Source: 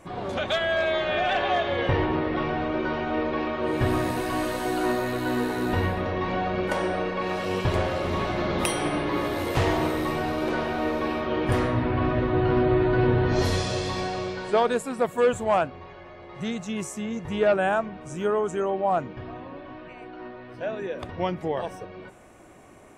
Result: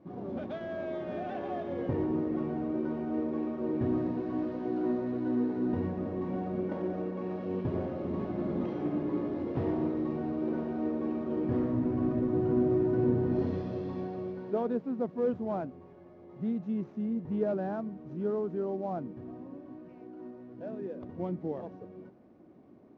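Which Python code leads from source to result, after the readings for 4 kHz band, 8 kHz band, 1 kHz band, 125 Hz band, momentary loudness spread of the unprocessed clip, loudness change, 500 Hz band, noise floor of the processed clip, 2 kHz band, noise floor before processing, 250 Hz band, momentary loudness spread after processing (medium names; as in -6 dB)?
under -25 dB, under -35 dB, -14.5 dB, -8.0 dB, 12 LU, -7.0 dB, -8.0 dB, -53 dBFS, -21.5 dB, -44 dBFS, -2.0 dB, 12 LU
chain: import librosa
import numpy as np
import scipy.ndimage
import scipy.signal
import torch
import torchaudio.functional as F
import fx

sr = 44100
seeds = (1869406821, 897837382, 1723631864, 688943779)

y = fx.cvsd(x, sr, bps=32000)
y = fx.bandpass_q(y, sr, hz=240.0, q=1.6)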